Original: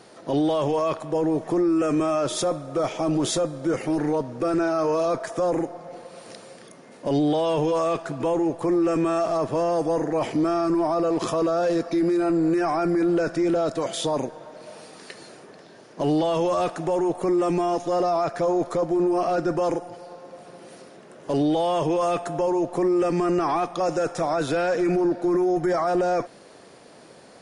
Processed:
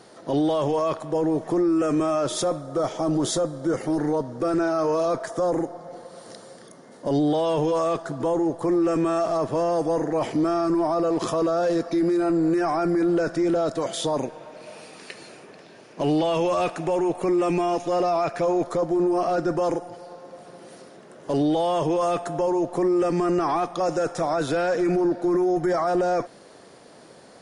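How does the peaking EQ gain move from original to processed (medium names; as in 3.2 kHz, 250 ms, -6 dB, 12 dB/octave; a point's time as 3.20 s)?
peaking EQ 2.5 kHz 0.38 oct
-4 dB
from 2.60 s -12.5 dB
from 4.42 s -4.5 dB
from 5.27 s -12 dB
from 7.34 s -4.5 dB
from 7.96 s -12.5 dB
from 8.65 s -3.5 dB
from 14.23 s +7 dB
from 18.63 s -3 dB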